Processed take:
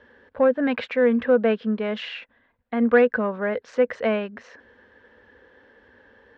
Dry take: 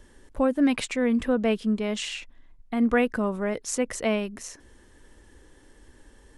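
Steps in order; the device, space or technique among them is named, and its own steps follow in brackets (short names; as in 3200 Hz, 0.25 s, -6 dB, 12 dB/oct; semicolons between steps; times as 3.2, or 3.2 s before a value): overdrive pedal into a guitar cabinet (overdrive pedal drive 10 dB, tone 1500 Hz, clips at -10.5 dBFS; speaker cabinet 87–4200 Hz, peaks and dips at 93 Hz +5 dB, 140 Hz -8 dB, 230 Hz +5 dB, 330 Hz -8 dB, 490 Hz +9 dB, 1600 Hz +8 dB)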